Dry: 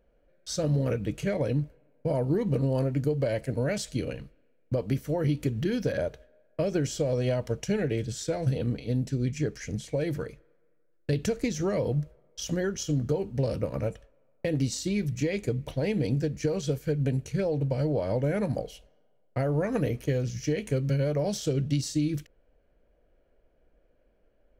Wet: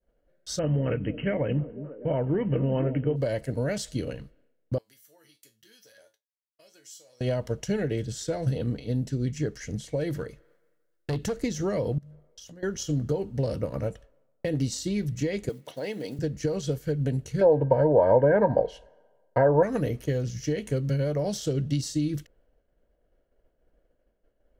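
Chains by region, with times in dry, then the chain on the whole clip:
0.59–3.16 brick-wall FIR low-pass 3200 Hz + high shelf 2200 Hz +9.5 dB + delay with a stepping band-pass 0.25 s, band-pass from 220 Hz, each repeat 0.7 oct, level -8 dB
4.78–7.21 differentiator + resonator 110 Hz, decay 0.26 s, mix 80%
10.1–11.36 overloaded stage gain 24 dB + mismatched tape noise reduction encoder only
11.98–12.63 notches 50/100/150/200/250/300/350 Hz + compressor 16:1, threshold -43 dBFS
15.49–16.19 block floating point 7-bit + HPF 190 Hz + low shelf 300 Hz -11 dB
17.41–19.63 small resonant body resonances 940/1600 Hz, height 18 dB, ringing for 40 ms + treble ducked by the level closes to 1800 Hz, closed at -23 dBFS + bell 530 Hz +10 dB 1.1 oct
whole clip: expander -60 dBFS; notch 2400 Hz, Q 8.7

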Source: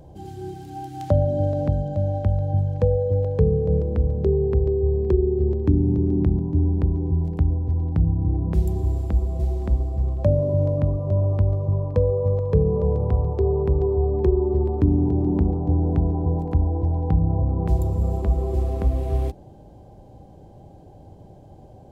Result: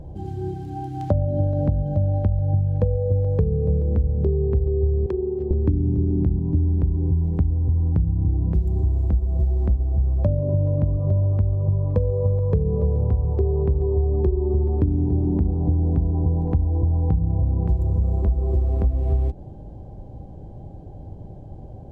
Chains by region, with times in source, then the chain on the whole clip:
5.06–5.51 HPF 420 Hz 6 dB/oct + tilt shelf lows -4.5 dB, about 740 Hz
whole clip: tilt -2.5 dB/oct; compressor, threshold -17 dBFS

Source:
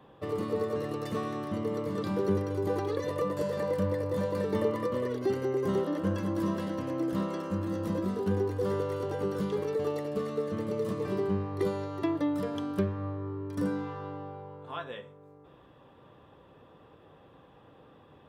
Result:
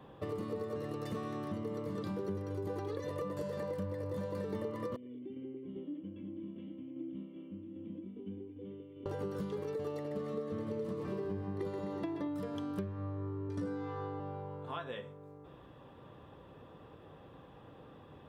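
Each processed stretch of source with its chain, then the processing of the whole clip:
4.96–9.06 low shelf 260 Hz -11 dB + tremolo saw down 2.5 Hz, depth 45% + vocal tract filter i
9.98–12.28 high shelf 6500 Hz -7 dB + split-band echo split 380 Hz, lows 0.175 s, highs 0.128 s, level -6 dB
13.47–14.2 LPF 7500 Hz + doubler 18 ms -3.5 dB
whole clip: low shelf 260 Hz +4 dB; compressor 4:1, threshold -37 dBFS

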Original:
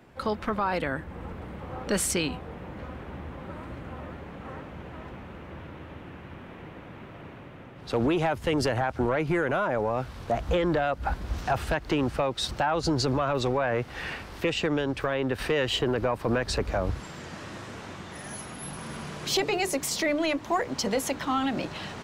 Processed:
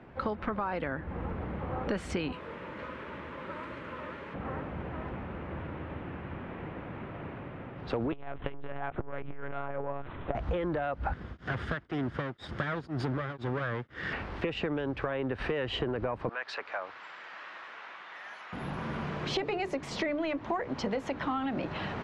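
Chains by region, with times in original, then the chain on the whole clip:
2.32–4.34 Butterworth band-stop 750 Hz, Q 4.6 + RIAA curve recording
8.12–10.35 low shelf 70 Hz -11 dB + monotone LPC vocoder at 8 kHz 140 Hz + core saturation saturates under 210 Hz
11.13–14.13 minimum comb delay 0.6 ms + HPF 93 Hz + beating tremolo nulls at 2 Hz
16.29–18.53 HPF 1200 Hz + air absorption 69 m
whole clip: LPF 2400 Hz 12 dB/oct; compressor, threshold -32 dBFS; gain +3 dB

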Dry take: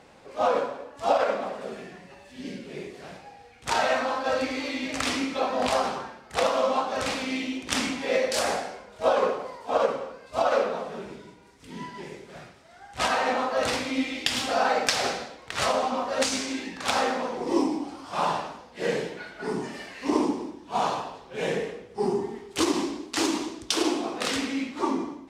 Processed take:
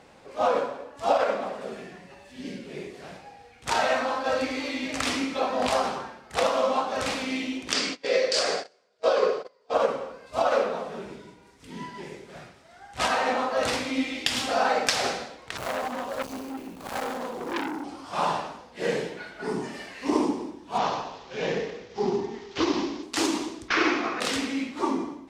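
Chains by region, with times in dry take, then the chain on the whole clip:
7.72–9.74 speaker cabinet 170–8100 Hz, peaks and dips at 240 Hz -9 dB, 430 Hz +6 dB, 860 Hz -9 dB, 4700 Hz +9 dB + echo 0.335 s -20.5 dB + gate -33 dBFS, range -24 dB
15.57–17.84 median filter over 25 samples + high shelf 6200 Hz +10 dB + core saturation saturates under 2600 Hz
20.78–23.03 CVSD 32 kbps + mismatched tape noise reduction encoder only
23.68–24.2 CVSD 32 kbps + band shelf 1700 Hz +13 dB 1.3 oct
whole clip: dry

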